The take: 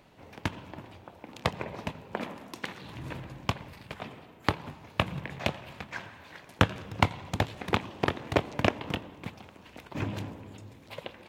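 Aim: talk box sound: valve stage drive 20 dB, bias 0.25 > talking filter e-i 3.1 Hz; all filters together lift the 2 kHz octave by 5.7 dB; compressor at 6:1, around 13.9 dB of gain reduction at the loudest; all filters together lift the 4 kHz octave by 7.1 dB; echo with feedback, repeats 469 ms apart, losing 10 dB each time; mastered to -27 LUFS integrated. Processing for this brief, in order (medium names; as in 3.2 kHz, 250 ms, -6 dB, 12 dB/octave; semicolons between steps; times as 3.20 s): peaking EQ 2 kHz +5 dB; peaking EQ 4 kHz +7.5 dB; compression 6:1, threshold -33 dBFS; feedback delay 469 ms, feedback 32%, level -10 dB; valve stage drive 20 dB, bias 0.25; talking filter e-i 3.1 Hz; trim +26 dB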